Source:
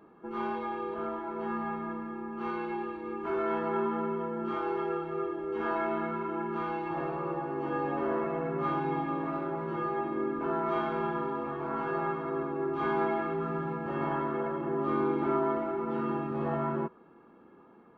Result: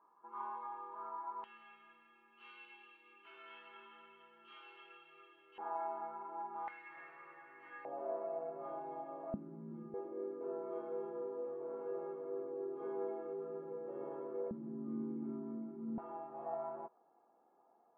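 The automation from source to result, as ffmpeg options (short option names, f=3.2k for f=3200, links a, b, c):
-af "asetnsamples=n=441:p=0,asendcmd='1.44 bandpass f 2900;5.58 bandpass f 820;6.68 bandpass f 2000;7.85 bandpass f 640;9.34 bandpass f 210;9.94 bandpass f 480;14.51 bandpass f 210;15.98 bandpass f 730',bandpass=f=1k:t=q:w=7.1:csg=0"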